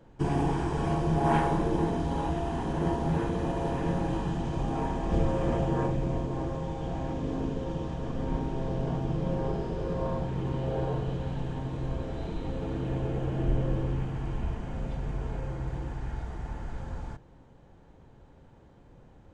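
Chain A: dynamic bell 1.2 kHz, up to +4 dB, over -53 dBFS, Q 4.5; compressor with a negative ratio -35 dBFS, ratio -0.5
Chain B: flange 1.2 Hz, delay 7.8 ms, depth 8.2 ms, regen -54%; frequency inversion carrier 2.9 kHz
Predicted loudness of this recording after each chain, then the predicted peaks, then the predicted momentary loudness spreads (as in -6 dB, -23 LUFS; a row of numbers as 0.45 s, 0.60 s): -38.0 LUFS, -30.0 LUFS; -19.0 dBFS, -15.0 dBFS; 15 LU, 7 LU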